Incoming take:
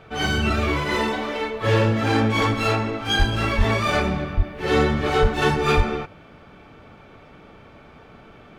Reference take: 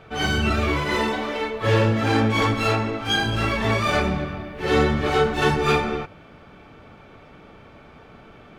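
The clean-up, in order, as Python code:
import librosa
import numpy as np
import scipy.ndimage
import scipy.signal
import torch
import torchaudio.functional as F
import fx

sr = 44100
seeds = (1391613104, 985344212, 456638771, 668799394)

y = fx.fix_declip(x, sr, threshold_db=-9.0)
y = fx.fix_deplosive(y, sr, at_s=(3.18, 3.57, 4.36, 5.21, 5.76))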